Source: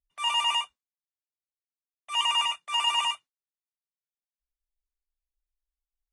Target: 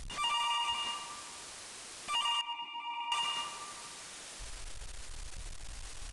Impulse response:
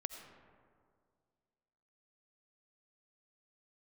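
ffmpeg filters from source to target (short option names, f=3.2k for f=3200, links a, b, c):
-filter_complex "[0:a]aeval=exprs='val(0)+0.5*0.0266*sgn(val(0))':c=same,asplit=2[a][b];[b]highpass=230[c];[1:a]atrim=start_sample=2205,adelay=137[d];[c][d]afir=irnorm=-1:irlink=0,volume=2dB[e];[a][e]amix=inputs=2:normalize=0,aresample=22050,aresample=44100,asettb=1/sr,asplit=3[f][g][h];[f]atrim=end=2.414[i];[g]atrim=start=2.41:end=3.12,asetpts=PTS-STARTPTS,afade=t=in:d=0.004:c=qsin,afade=t=out:st=0.706:d=0.004:c=qsin,asplit=3[j][k][l];[j]bandpass=f=300:t=q:w=8,volume=0dB[m];[k]bandpass=f=870:t=q:w=8,volume=-6dB[n];[l]bandpass=f=2.24k:t=q:w=8,volume=-9dB[o];[m][n][o]amix=inputs=3:normalize=0[p];[h]atrim=start=3.116[q];[i][p]acrossfade=d=0.004:c1=hsin:c2=qsin[r];[r][q]acrossfade=d=0.004:c1=qsin:c2=hsin,asplit=2[s][t];[t]adelay=119,lowpass=f=2k:p=1,volume=-14.5dB,asplit=2[u][v];[v]adelay=119,lowpass=f=2k:p=1,volume=0.39,asplit=2[w][x];[x]adelay=119,lowpass=f=2k:p=1,volume=0.39,asplit=2[y][z];[z]adelay=119,lowpass=f=2k:p=1,volume=0.39[aa];[s][u][w][y][aa]amix=inputs=5:normalize=0,acompressor=threshold=-26dB:ratio=6,volume=-4dB"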